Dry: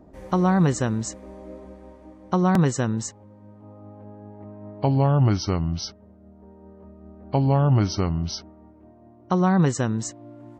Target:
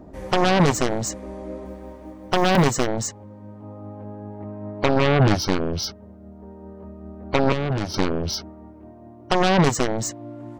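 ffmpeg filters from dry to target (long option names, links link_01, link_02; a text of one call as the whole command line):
ffmpeg -i in.wav -filter_complex "[0:a]aeval=exprs='0.335*(cos(1*acos(clip(val(0)/0.335,-1,1)))-cos(1*PI/2))+0.15*(cos(7*acos(clip(val(0)/0.335,-1,1)))-cos(7*PI/2))':channel_layout=same,asettb=1/sr,asplit=3[link_01][link_02][link_03];[link_01]atrim=end=1.654[link_04];[link_02]atrim=start=1.65:end=2.86,asetpts=PTS-STARTPTS,afade=type=in:duration=0.004:curve=qsin,afade=type=out:start_time=1.206:duration=0.004:curve=qsin,acrusher=bits=9:mode=log:mix=0:aa=0.000001[link_05];[link_03]atrim=start=2.856[link_06];[link_04][link_05]acrossfade=duration=0.004:curve1=hsin:curve2=qsin[link_07];[link_07][link_06]acrossfade=duration=0.004:curve1=qsin:curve2=hsin,asettb=1/sr,asplit=3[link_08][link_09][link_10];[link_08]atrim=end=7.524[link_11];[link_09]atrim=start=7.52:end=7.94,asetpts=PTS-STARTPTS,afade=type=in:duration=0.004:curve=qsin,afade=type=out:start_time=0.416:duration=0.004:curve=qsin,acrossover=split=380|5700[link_12][link_13][link_14];[link_12]acompressor=threshold=-23dB:ratio=4[link_15];[link_13]acompressor=threshold=-30dB:ratio=4[link_16];[link_14]acompressor=threshold=-47dB:ratio=4[link_17];[link_15][link_16][link_17]amix=inputs=3:normalize=0[link_18];[link_10]atrim=start=7.936[link_19];[link_11][link_18]acrossfade=duration=0.004:curve1=hsin:curve2=qsin[link_20];[link_20][link_19]acrossfade=duration=0.004:curve1=qsin:curve2=hsin" out.wav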